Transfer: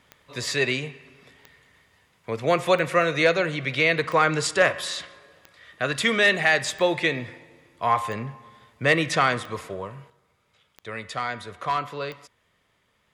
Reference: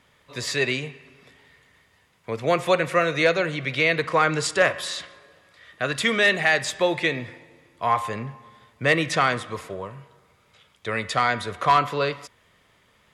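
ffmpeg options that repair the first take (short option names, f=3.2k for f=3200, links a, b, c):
-af "adeclick=t=4,asetnsamples=n=441:p=0,asendcmd='10.1 volume volume 7.5dB',volume=0dB"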